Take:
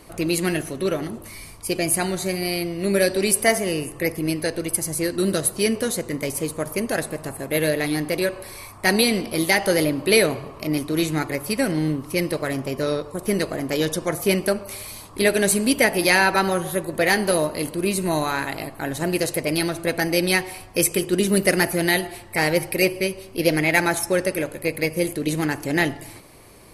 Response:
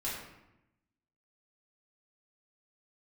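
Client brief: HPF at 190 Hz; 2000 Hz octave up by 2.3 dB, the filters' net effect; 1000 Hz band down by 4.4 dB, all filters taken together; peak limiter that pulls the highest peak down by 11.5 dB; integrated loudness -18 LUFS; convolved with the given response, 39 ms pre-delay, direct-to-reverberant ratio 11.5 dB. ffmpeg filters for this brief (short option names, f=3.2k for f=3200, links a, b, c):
-filter_complex "[0:a]highpass=190,equalizer=f=1k:t=o:g=-7.5,equalizer=f=2k:t=o:g=4.5,alimiter=limit=-12dB:level=0:latency=1,asplit=2[a][b];[1:a]atrim=start_sample=2205,adelay=39[c];[b][c]afir=irnorm=-1:irlink=0,volume=-15.5dB[d];[a][d]amix=inputs=2:normalize=0,volume=7dB"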